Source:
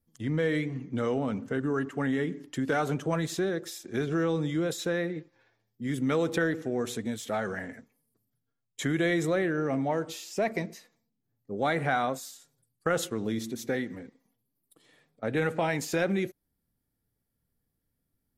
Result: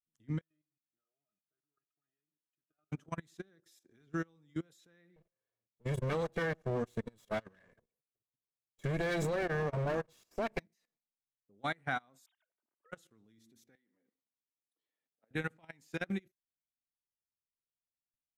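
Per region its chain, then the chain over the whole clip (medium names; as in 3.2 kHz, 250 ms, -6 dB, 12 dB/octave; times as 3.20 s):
0.41–2.92 s: pre-emphasis filter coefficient 0.97 + pitch-class resonator D#, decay 0.12 s
5.16–10.60 s: comb filter that takes the minimum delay 1.8 ms + peaking EQ 310 Hz +10 dB 2.9 oct
12.26–12.92 s: formants replaced by sine waves + comb 3.2 ms, depth 45% + three bands compressed up and down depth 70%
13.75–15.31 s: compression, threshold -43 dBFS + band-pass 250–6500 Hz
whole clip: dynamic bell 510 Hz, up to -8 dB, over -42 dBFS, Q 1.1; level held to a coarse grid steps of 15 dB; upward expansion 2.5:1, over -42 dBFS; trim -1 dB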